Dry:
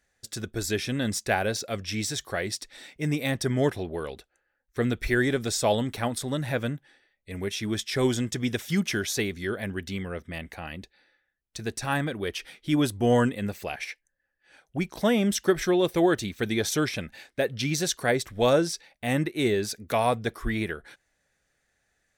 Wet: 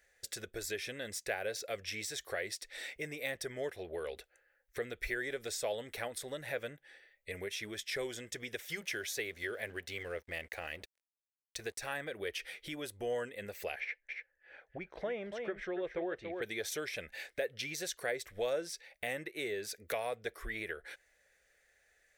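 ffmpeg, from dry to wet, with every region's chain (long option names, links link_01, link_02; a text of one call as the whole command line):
ffmpeg -i in.wav -filter_complex "[0:a]asettb=1/sr,asplit=3[link_01][link_02][link_03];[link_01]atrim=end=8.604[link_04];[link_02]atrim=start=8.6:end=11.9,asetpts=PTS-STARTPTS,afade=type=in:duration=0.004:curve=qsin,afade=type=out:start_time=3.296:duration=0.004:curve=qsin,bandreject=frequency=190:width=6,aeval=exprs='sgn(val(0))*max(abs(val(0))-0.00188,0)':channel_layout=same[link_05];[link_03]atrim=start=11.896[link_06];[link_04][link_05]acrossfade=duration=0.004:curve1=hsin:curve2=qsin[link_07];[link_07][link_06]acrossfade=duration=0.004:curve1=qsin:curve2=hsin,asettb=1/sr,asplit=3[link_08][link_09][link_10];[link_08]atrim=end=13.804[link_11];[link_09]atrim=start=13.8:end=16.42,asetpts=PTS-STARTPTS,afade=type=in:duration=0.004:curve=qsin,afade=type=out:start_time=2.616:duration=0.004:curve=qsin,lowpass=2100,aecho=1:1:285:0.376,atrim=end_sample=115542[link_12];[link_10]atrim=start=16.416[link_13];[link_11][link_12]acrossfade=duration=0.004:curve1=hsin:curve2=qsin[link_14];[link_14][link_13]acrossfade=duration=0.004:curve1=qsin:curve2=hsin,highshelf=frequency=11000:gain=8.5,acompressor=threshold=-40dB:ratio=3,equalizer=frequency=125:width_type=o:width=1:gain=-9,equalizer=frequency=250:width_type=o:width=1:gain=-10,equalizer=frequency=500:width_type=o:width=1:gain=9,equalizer=frequency=1000:width_type=o:width=1:gain=-5,equalizer=frequency=2000:width_type=o:width=1:gain=8,volume=-1.5dB" out.wav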